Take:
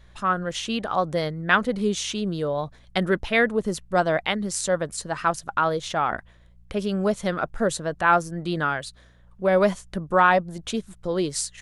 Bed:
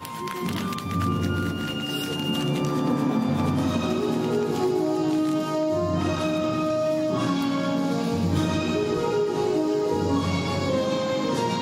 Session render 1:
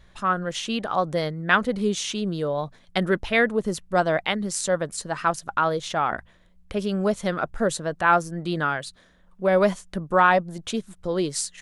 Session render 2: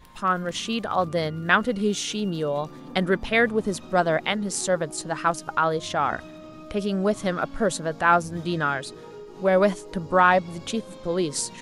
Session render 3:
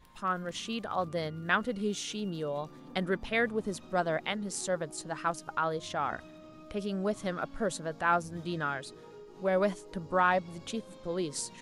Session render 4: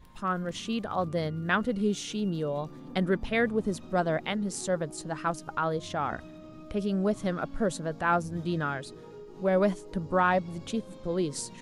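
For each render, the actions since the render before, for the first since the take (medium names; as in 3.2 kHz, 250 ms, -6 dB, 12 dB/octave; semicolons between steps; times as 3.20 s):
de-hum 60 Hz, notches 2
add bed -18 dB
trim -8.5 dB
bass shelf 420 Hz +7.5 dB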